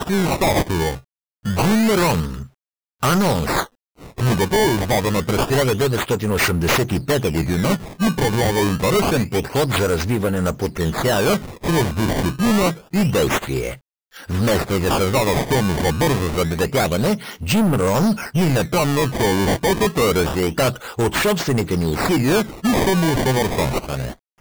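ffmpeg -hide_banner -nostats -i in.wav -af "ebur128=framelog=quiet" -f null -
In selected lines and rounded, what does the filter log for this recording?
Integrated loudness:
  I:         -19.1 LUFS
  Threshold: -29.3 LUFS
Loudness range:
  LRA:         1.6 LU
  Threshold: -39.3 LUFS
  LRA low:   -20.1 LUFS
  LRA high:  -18.6 LUFS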